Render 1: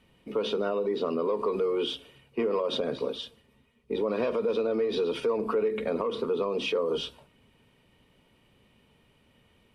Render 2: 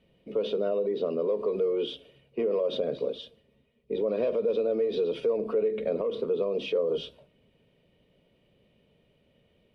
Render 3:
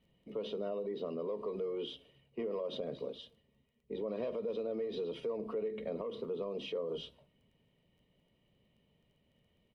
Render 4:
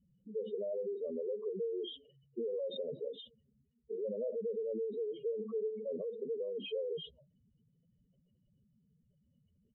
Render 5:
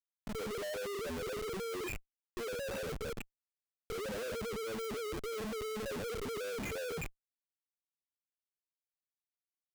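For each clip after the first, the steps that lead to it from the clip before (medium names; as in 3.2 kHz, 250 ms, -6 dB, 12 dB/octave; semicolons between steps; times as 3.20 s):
FFT filter 110 Hz 0 dB, 170 Hz +5 dB, 250 Hz 0 dB, 610 Hz +8 dB, 870 Hz -6 dB, 1.3 kHz -6 dB, 2.2 kHz -2 dB, 3.5 kHz 0 dB, 7.5 kHz -9 dB; trim -4.5 dB
comb 1 ms, depth 36%; crackle 17 per s -58 dBFS; trim -7.5 dB
spectral contrast enhancement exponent 3.4; trim +1 dB
knee-point frequency compression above 1.4 kHz 1.5:1; Schmitt trigger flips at -45 dBFS; trim +1.5 dB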